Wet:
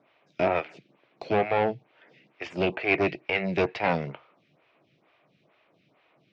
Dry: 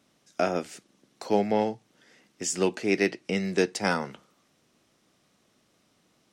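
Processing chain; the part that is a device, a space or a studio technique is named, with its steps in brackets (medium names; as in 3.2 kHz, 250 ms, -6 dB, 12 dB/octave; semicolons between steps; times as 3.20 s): vibe pedal into a guitar amplifier (lamp-driven phase shifter 2.2 Hz; valve stage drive 28 dB, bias 0.7; cabinet simulation 96–3600 Hz, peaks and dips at 140 Hz +8 dB, 230 Hz -7 dB, 650 Hz +5 dB, 940 Hz +3 dB, 2.4 kHz +9 dB); trim +8.5 dB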